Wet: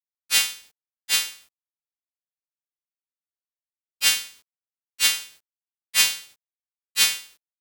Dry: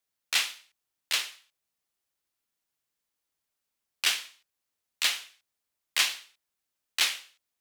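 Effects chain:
every partial snapped to a pitch grid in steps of 2 semitones
log-companded quantiser 4 bits
level −1 dB

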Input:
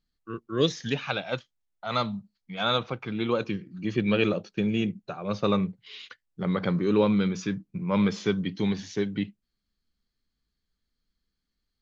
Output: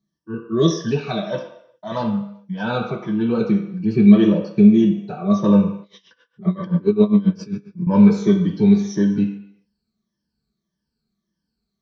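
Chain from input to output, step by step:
rippled gain that drifts along the octave scale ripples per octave 1.2, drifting −1.7 Hz, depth 14 dB
notch comb filter 270 Hz
convolution reverb RT60 0.75 s, pre-delay 3 ms, DRR −1.5 dB
0:05.82–0:07.87: tremolo with a sine in dB 7.5 Hz, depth 20 dB
level −8.5 dB

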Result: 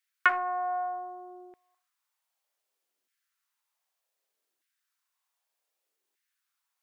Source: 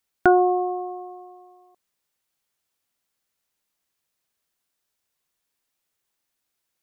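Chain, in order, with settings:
four-comb reverb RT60 0.31 s, combs from 28 ms, DRR 7.5 dB
auto-filter high-pass saw down 0.65 Hz 310–1,900 Hz
highs frequency-modulated by the lows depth 0.17 ms
level −5.5 dB

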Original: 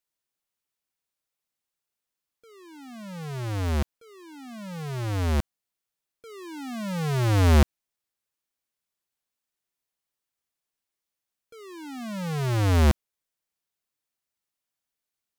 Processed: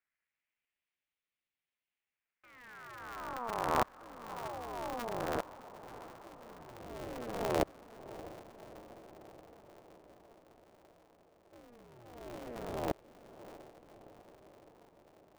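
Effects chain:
phase distortion by the signal itself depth 0.83 ms
high-pass filter 130 Hz 24 dB per octave
dynamic equaliser 440 Hz, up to +7 dB, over −39 dBFS, Q 0.73
auto-filter band-pass sine 0.18 Hz 770–3,400 Hz
in parallel at −11 dB: decimation without filtering 25×
on the sum: low-pass filter sweep 2,100 Hz → 520 Hz, 0:01.92–0:05.78
on a send: feedback delay with all-pass diffusion 664 ms, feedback 66%, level −14.5 dB
on the sum: ring modulator with a square carrier 120 Hz
level +2 dB

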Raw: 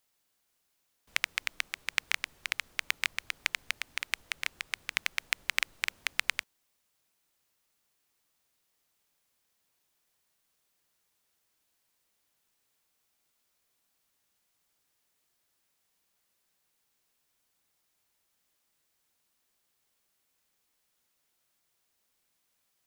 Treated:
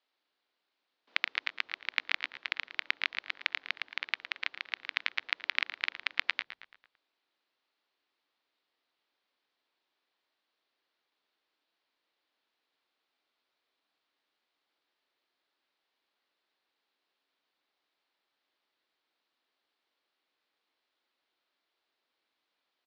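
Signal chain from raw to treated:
elliptic band-pass filter 280–4,200 Hz, stop band 40 dB
echo with shifted repeats 112 ms, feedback 46%, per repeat −96 Hz, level −13 dB

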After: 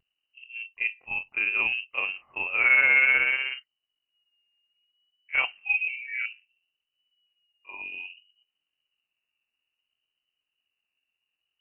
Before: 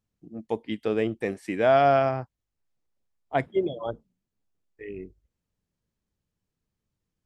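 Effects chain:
voice inversion scrambler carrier 2,900 Hz
pitch vibrato 0.98 Hz 36 cents
time stretch by overlap-add 1.6×, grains 124 ms

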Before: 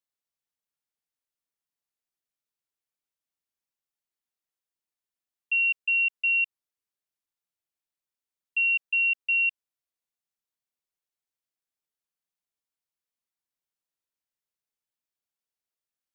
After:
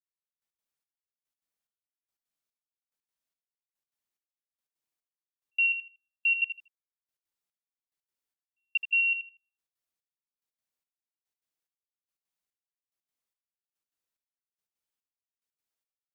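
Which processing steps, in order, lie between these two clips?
gate pattern ".....x.xxx" 180 BPM −60 dB
repeating echo 79 ms, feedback 20%, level −9.5 dB

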